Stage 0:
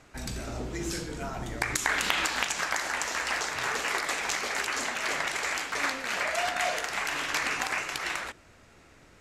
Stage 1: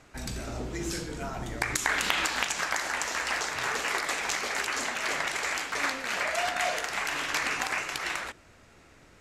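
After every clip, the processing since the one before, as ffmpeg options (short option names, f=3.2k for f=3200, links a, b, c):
-af anull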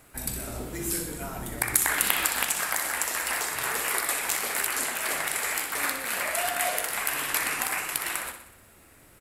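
-af "aecho=1:1:62|124|186|248|310|372|434:0.355|0.199|0.111|0.0623|0.0349|0.0195|0.0109,aexciter=amount=6.6:drive=8.2:freq=8.8k,volume=-1dB"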